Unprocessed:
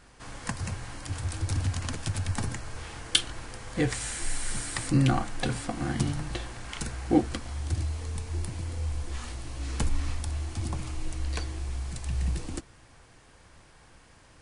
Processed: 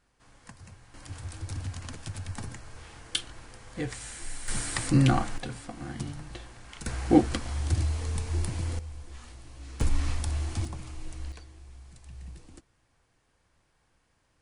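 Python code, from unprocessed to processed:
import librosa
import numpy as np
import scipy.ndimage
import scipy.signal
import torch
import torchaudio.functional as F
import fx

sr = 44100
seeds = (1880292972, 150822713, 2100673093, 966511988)

y = fx.gain(x, sr, db=fx.steps((0.0, -15.5), (0.94, -7.0), (4.48, 1.5), (5.38, -8.0), (6.86, 3.0), (8.79, -9.5), (9.81, 2.0), (10.65, -6.0), (11.32, -15.0)))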